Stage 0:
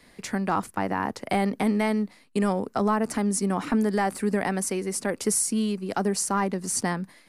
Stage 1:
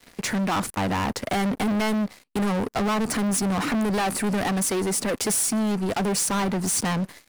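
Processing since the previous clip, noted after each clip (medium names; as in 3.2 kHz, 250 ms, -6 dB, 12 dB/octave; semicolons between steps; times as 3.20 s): waveshaping leveller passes 5; trim -7 dB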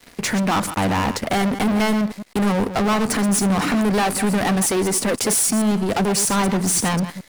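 chunks repeated in reverse 106 ms, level -10.5 dB; trim +4.5 dB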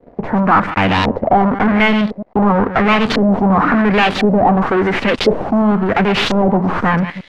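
tracing distortion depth 0.13 ms; LFO low-pass saw up 0.95 Hz 490–3900 Hz; trim +5 dB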